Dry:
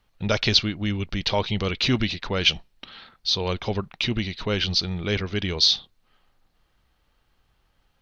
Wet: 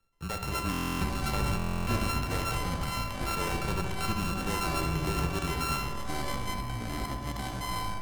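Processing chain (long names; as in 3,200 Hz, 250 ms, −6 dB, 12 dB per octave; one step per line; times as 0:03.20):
samples sorted by size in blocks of 32 samples
noise gate −50 dBFS, range −10 dB
reversed playback
downward compressor 12 to 1, threshold −33 dBFS, peak gain reduction 20.5 dB
reversed playback
brickwall limiter −28.5 dBFS, peak gain reduction 7 dB
frequency shifter −23 Hz
delay with pitch and tempo change per echo 126 ms, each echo −5 semitones, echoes 3
feedback echo with a low-pass in the loop 68 ms, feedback 77%, low-pass 3,400 Hz, level −8.5 dB
on a send at −9 dB: convolution reverb RT60 2.5 s, pre-delay 30 ms
on the sum: buffer that repeats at 0:00.71/0:01.57, samples 1,024, times 12
level +4.5 dB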